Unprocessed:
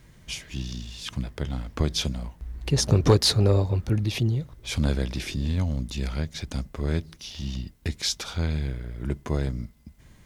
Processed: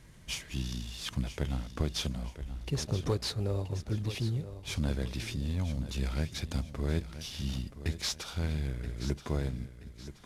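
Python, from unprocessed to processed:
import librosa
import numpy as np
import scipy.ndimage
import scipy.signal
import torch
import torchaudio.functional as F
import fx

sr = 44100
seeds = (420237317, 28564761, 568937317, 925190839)

y = fx.cvsd(x, sr, bps=64000)
y = fx.rider(y, sr, range_db=5, speed_s=0.5)
y = fx.echo_feedback(y, sr, ms=977, feedback_pct=37, wet_db=-12.5)
y = y * librosa.db_to_amplitude(-7.5)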